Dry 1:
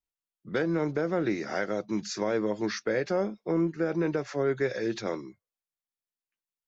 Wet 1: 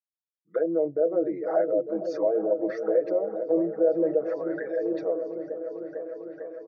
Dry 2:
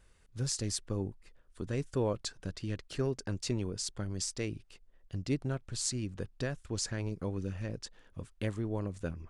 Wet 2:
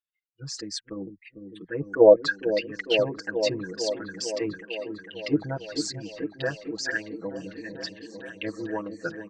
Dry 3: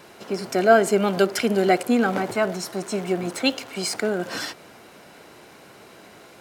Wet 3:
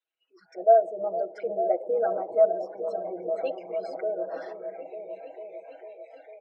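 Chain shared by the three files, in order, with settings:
spectral envelope exaggerated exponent 2
low-pass filter 6,900 Hz 12 dB per octave
comb filter 6.2 ms, depth 98%
automatic gain control gain up to 4.5 dB
envelope filter 660–3,500 Hz, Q 3.7, down, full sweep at −20 dBFS
echo whose low-pass opens from repeat to repeat 450 ms, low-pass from 400 Hz, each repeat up 1 octave, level −6 dB
noise reduction from a noise print of the clip's start 25 dB
loudness normalisation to −27 LKFS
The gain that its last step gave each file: +4.5, +19.0, −5.5 decibels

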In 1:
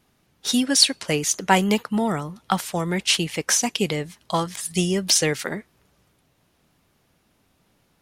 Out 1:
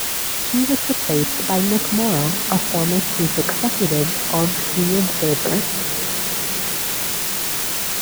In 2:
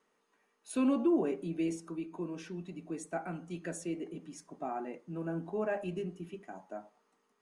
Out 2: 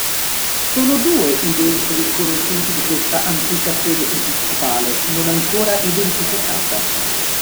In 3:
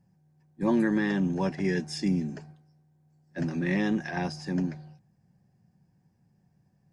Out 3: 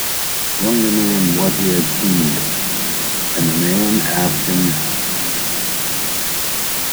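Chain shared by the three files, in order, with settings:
treble cut that deepens with the level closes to 770 Hz, closed at −21.5 dBFS
reversed playback
downward compressor, threshold −30 dBFS
reversed playback
moving average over 9 samples
bit-depth reduction 6 bits, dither triangular
on a send: feedback delay with all-pass diffusion 654 ms, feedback 71%, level −14.5 dB
on the sum: normalise the peak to −3 dBFS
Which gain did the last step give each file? +13.5, +17.5, +16.5 decibels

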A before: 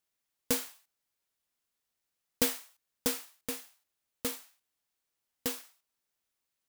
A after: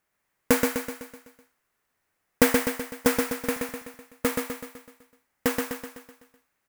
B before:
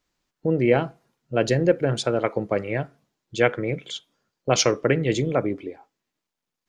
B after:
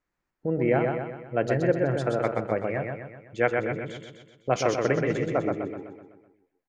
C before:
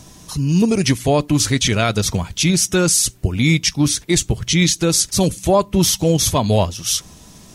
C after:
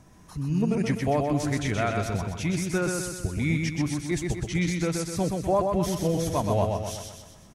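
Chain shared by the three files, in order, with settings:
high shelf with overshoot 2,600 Hz −8.5 dB, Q 1.5
on a send: repeating echo 126 ms, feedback 52%, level −4 dB
on the sum: dynamic equaliser 700 Hz, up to +4 dB, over −34 dBFS, Q 3.8
loudness normalisation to −27 LKFS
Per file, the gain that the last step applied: +11.5, −5.5, −11.0 decibels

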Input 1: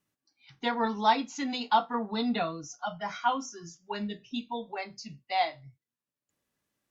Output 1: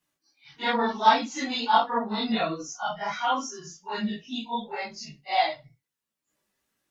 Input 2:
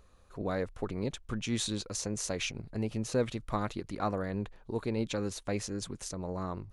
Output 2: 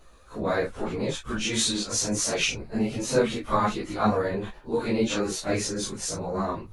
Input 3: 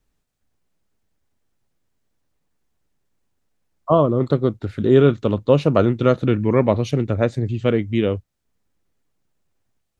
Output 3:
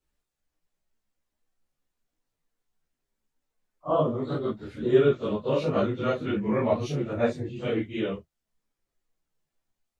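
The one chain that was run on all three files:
random phases in long frames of 100 ms
multi-voice chorus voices 6, 0.57 Hz, delay 16 ms, depth 3.4 ms
low-shelf EQ 290 Hz −6.5 dB
loudness normalisation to −27 LKFS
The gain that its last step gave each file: +8.5, +13.5, −3.0 decibels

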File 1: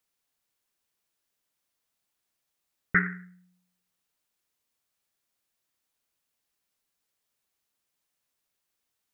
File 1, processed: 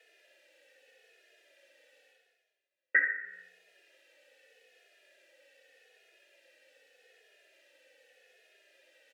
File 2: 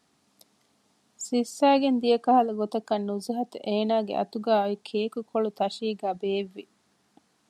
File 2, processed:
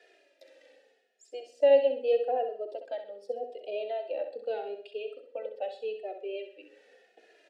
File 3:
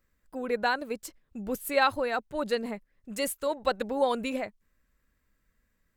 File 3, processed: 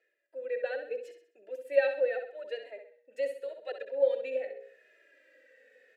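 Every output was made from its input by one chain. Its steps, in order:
Butterworth high-pass 300 Hz 36 dB per octave
mains-hum notches 60/120/180/240/300/360/420/480/540 Hz
reversed playback
upward compression, threshold −33 dBFS
reversed playback
formant filter e
flutter between parallel walls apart 11.1 metres, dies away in 0.48 s
barber-pole flanger 2.4 ms −0.83 Hz
normalise the peak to −12 dBFS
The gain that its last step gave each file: +12.0, +6.0, +6.0 decibels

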